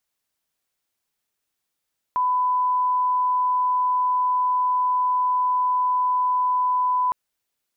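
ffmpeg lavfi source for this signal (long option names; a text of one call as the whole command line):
ffmpeg -f lavfi -i "sine=frequency=1000:duration=4.96:sample_rate=44100,volume=0.06dB" out.wav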